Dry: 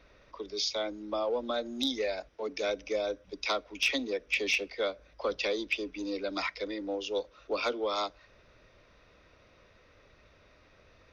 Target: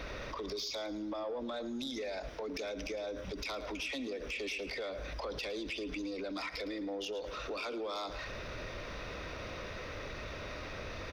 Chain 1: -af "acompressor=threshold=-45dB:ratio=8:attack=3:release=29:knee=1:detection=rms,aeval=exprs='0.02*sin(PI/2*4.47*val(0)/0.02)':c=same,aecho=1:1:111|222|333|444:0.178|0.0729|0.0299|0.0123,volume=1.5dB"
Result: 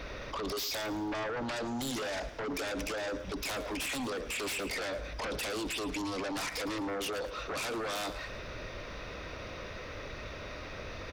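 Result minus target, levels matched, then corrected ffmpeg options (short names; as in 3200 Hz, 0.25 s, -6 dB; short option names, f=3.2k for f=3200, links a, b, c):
compressor: peak gain reduction -9.5 dB
-af "acompressor=threshold=-56dB:ratio=8:attack=3:release=29:knee=1:detection=rms,aeval=exprs='0.02*sin(PI/2*4.47*val(0)/0.02)':c=same,aecho=1:1:111|222|333|444:0.178|0.0729|0.0299|0.0123,volume=1.5dB"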